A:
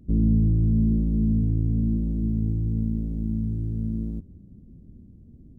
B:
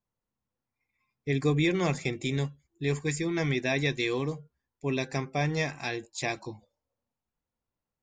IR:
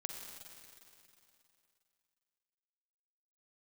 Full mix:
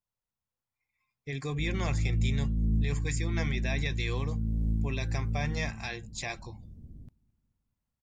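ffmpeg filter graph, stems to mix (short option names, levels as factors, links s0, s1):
-filter_complex "[0:a]alimiter=limit=0.106:level=0:latency=1:release=390,adelay=1500,volume=0.891,asplit=3[s0][s1][s2];[s1]volume=0.237[s3];[s2]volume=0.0668[s4];[1:a]alimiter=limit=0.106:level=0:latency=1:release=14,volume=0.596,asplit=2[s5][s6];[s6]apad=whole_len=312504[s7];[s0][s7]sidechaincompress=threshold=0.0126:ratio=8:attack=28:release=495[s8];[2:a]atrim=start_sample=2205[s9];[s3][s9]afir=irnorm=-1:irlink=0[s10];[s4]aecho=0:1:217|434|651|868|1085|1302|1519|1736:1|0.55|0.303|0.166|0.0915|0.0503|0.0277|0.0152[s11];[s8][s5][s10][s11]amix=inputs=4:normalize=0,equalizer=f=300:t=o:w=1.7:g=-9,dynaudnorm=f=520:g=3:m=1.41"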